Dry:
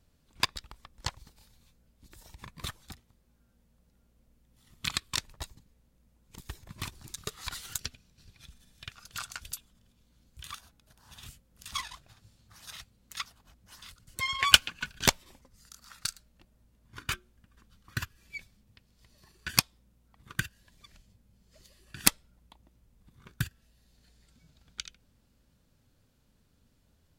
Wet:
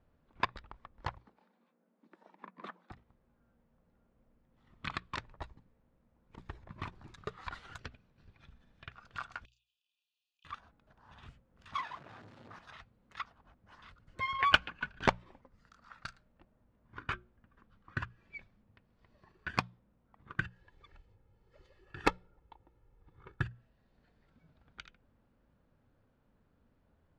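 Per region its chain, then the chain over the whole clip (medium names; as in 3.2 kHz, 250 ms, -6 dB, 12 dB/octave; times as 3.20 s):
1.18–2.91 s: steep high-pass 180 Hz 72 dB/octave + treble shelf 2.7 kHz -9.5 dB
9.45–10.45 s: doubling 31 ms -3 dB + compression 4:1, threshold -53 dBFS + brick-wall FIR band-pass 2.4–7.6 kHz
11.73–12.59 s: jump at every zero crossing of -43.5 dBFS + high-pass 140 Hz
20.45–23.43 s: comb 2.3 ms, depth 68% + dynamic bell 440 Hz, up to +5 dB, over -53 dBFS, Q 0.8
whole clip: low-pass 1.4 kHz 12 dB/octave; bass shelf 340 Hz -7 dB; hum notches 60/120/180 Hz; trim +3.5 dB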